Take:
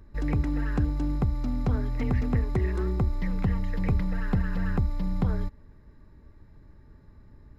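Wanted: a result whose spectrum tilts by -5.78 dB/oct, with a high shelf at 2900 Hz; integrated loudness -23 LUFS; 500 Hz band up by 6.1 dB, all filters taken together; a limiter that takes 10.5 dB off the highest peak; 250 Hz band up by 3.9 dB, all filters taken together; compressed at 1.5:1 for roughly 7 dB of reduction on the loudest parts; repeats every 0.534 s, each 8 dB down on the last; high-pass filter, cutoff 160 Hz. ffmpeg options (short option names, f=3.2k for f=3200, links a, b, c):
-af "highpass=160,equalizer=f=250:t=o:g=5,equalizer=f=500:t=o:g=6,highshelf=f=2.9k:g=8.5,acompressor=threshold=-40dB:ratio=1.5,alimiter=level_in=3.5dB:limit=-24dB:level=0:latency=1,volume=-3.5dB,aecho=1:1:534|1068|1602|2136|2670:0.398|0.159|0.0637|0.0255|0.0102,volume=13.5dB"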